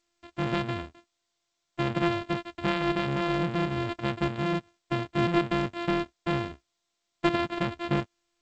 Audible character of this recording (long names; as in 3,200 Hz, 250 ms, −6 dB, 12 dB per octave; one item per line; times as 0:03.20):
a buzz of ramps at a fixed pitch in blocks of 128 samples
G.722